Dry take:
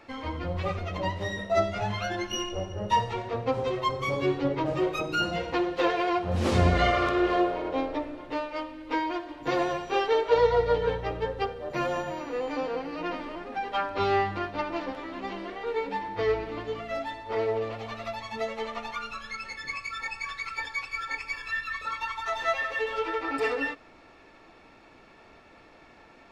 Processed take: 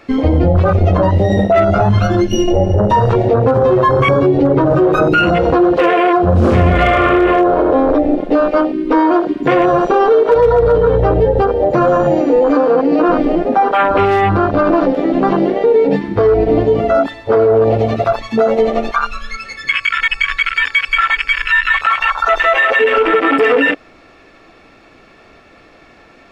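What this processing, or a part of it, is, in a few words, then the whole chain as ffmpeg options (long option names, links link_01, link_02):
loud club master: -filter_complex "[0:a]bandreject=frequency=900:width=6.8,afwtdn=0.0282,asettb=1/sr,asplit=3[link_01][link_02][link_03];[link_01]atrim=end=1.894[link_04];[link_02]atrim=start=1.89:end=2.48,asetpts=PTS-STARTPTS,afade=type=in:duration=0.004:curve=qsin,afade=type=out:start_time=0.586:duration=0.004:curve=qsin,equalizer=frequency=840:width=0.61:gain=-12[link_05];[link_03]atrim=start=2.476[link_06];[link_04][link_05]acrossfade=duration=0.004:curve1=hsin:curve2=qsin[link_07];[link_07][link_06]acrossfade=duration=0.004:curve1=qsin:curve2=hsin,acompressor=threshold=-30dB:ratio=2,asoftclip=type=hard:threshold=-21.5dB,alimiter=level_in=29.5dB:limit=-1dB:release=50:level=0:latency=1,volume=-3dB"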